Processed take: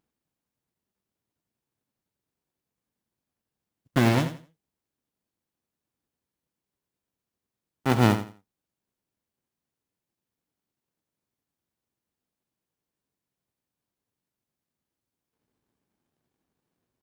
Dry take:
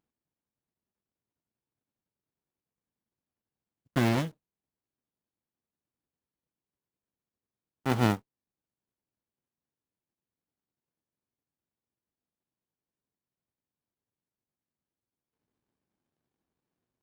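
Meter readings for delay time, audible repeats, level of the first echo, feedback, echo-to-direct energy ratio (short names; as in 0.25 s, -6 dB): 85 ms, 2, -11.0 dB, 23%, -11.0 dB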